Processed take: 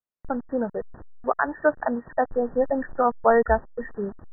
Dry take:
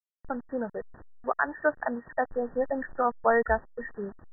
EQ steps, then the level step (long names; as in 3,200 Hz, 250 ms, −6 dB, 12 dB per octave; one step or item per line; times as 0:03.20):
low-pass filter 1,800 Hz
high-frequency loss of the air 500 metres
+7.0 dB